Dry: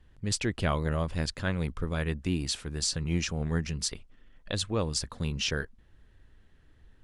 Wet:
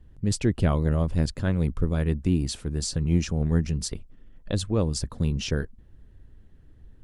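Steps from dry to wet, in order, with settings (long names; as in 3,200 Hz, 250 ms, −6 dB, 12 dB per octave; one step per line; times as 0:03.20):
high-shelf EQ 6,100 Hz +9 dB
harmonic and percussive parts rebalanced harmonic −3 dB
tilt shelving filter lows +8 dB, about 710 Hz
level +2 dB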